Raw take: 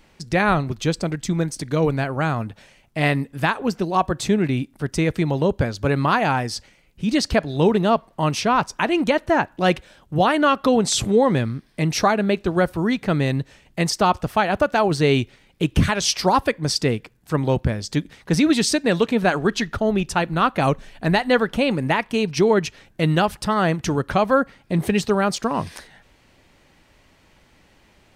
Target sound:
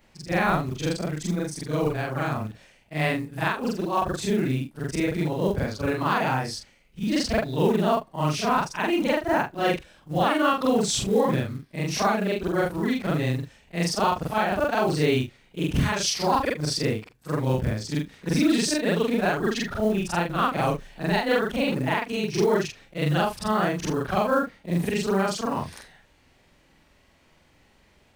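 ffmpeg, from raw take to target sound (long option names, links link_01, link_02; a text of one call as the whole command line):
ffmpeg -i in.wav -af "afftfilt=real='re':imag='-im':win_size=4096:overlap=0.75,acrusher=bits=7:mode=log:mix=0:aa=0.000001" out.wav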